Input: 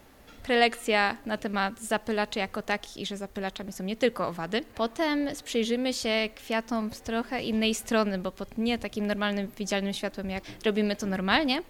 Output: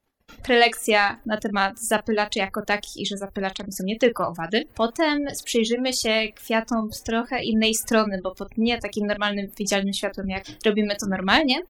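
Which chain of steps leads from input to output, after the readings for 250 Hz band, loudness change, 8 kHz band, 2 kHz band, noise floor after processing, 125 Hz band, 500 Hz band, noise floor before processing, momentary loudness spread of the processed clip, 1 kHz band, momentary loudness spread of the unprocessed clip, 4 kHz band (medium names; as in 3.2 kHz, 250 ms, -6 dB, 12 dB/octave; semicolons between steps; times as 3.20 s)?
+4.5 dB, +5.5 dB, +9.5 dB, +6.0 dB, -52 dBFS, +4.0 dB, +5.5 dB, -52 dBFS, 9 LU, +5.5 dB, 10 LU, +6.5 dB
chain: reverb removal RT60 1.4 s; gate -51 dBFS, range -32 dB; spectral gate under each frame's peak -30 dB strong; treble shelf 6.9 kHz +6.5 dB; in parallel at -7 dB: saturation -20.5 dBFS, distortion -13 dB; on the sum: doubling 36 ms -13 dB; trim +3.5 dB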